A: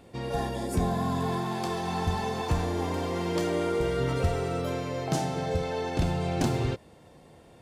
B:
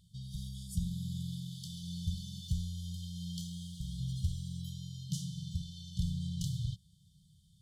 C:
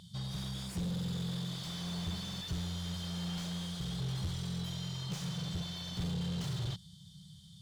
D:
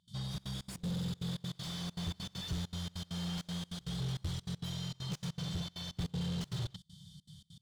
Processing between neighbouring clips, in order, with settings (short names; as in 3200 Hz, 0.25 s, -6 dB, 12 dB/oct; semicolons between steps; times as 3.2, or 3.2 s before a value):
FFT band-reject 200–2900 Hz; gain -6 dB
overdrive pedal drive 36 dB, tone 1400 Hz, clips at -21.5 dBFS; gain -5.5 dB
step gate ".xxxx.xx.x" 198 bpm -24 dB